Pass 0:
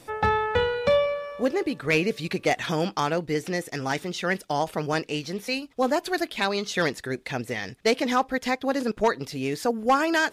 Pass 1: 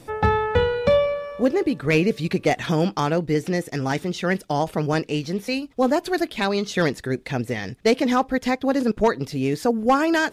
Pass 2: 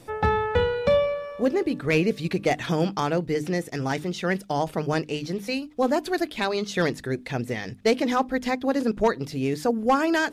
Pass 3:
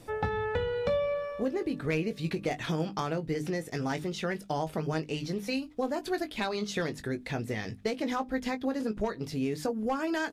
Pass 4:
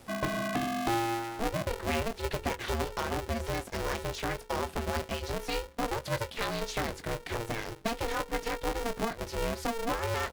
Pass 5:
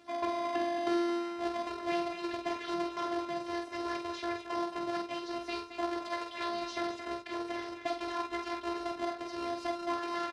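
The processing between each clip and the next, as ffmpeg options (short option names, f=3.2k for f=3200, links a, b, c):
-af "lowshelf=f=440:g=8.5"
-af "bandreject=f=50:t=h:w=6,bandreject=f=100:t=h:w=6,bandreject=f=150:t=h:w=6,bandreject=f=200:t=h:w=6,bandreject=f=250:t=h:w=6,bandreject=f=300:t=h:w=6,volume=-2.5dB"
-filter_complex "[0:a]lowshelf=f=120:g=4,acompressor=threshold=-24dB:ratio=6,asplit=2[a][b];[b]adelay=19,volume=-9dB[c];[a][c]amix=inputs=2:normalize=0,volume=-3.5dB"
-af "aeval=exprs='val(0)*sgn(sin(2*PI*230*n/s))':c=same,volume=-1dB"
-filter_complex "[0:a]afftfilt=real='hypot(re,im)*cos(PI*b)':imag='0':win_size=512:overlap=0.75,highpass=120,lowpass=4.5k,asplit=2[a][b];[b]aecho=0:1:46.65|221.6:0.562|0.355[c];[a][c]amix=inputs=2:normalize=0"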